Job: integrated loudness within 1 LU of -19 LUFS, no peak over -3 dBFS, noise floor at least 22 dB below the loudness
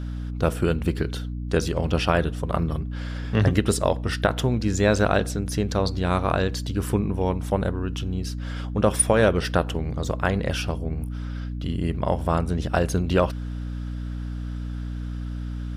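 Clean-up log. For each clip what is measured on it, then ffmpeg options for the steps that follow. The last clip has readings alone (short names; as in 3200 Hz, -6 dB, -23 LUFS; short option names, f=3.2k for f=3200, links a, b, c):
hum 60 Hz; harmonics up to 300 Hz; hum level -28 dBFS; loudness -25.0 LUFS; peak -6.0 dBFS; loudness target -19.0 LUFS
-> -af "bandreject=f=60:t=h:w=6,bandreject=f=120:t=h:w=6,bandreject=f=180:t=h:w=6,bandreject=f=240:t=h:w=6,bandreject=f=300:t=h:w=6"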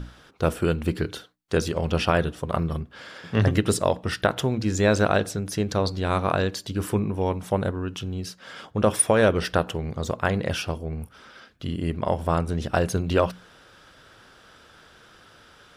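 hum none; loudness -25.0 LUFS; peak -6.0 dBFS; loudness target -19.0 LUFS
-> -af "volume=6dB,alimiter=limit=-3dB:level=0:latency=1"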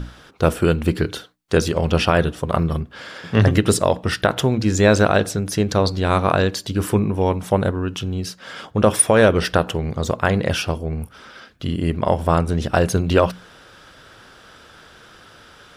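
loudness -19.5 LUFS; peak -3.0 dBFS; noise floor -47 dBFS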